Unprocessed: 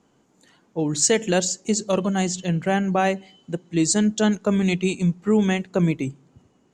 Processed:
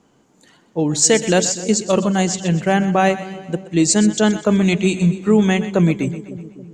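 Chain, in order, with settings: split-band echo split 510 Hz, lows 0.277 s, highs 0.125 s, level -13.5 dB; gain +5 dB

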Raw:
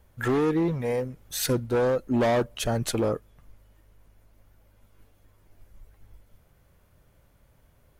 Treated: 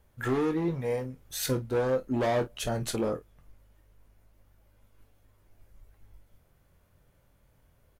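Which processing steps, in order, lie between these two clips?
early reflections 23 ms -8.5 dB, 50 ms -16 dB; gain -4.5 dB

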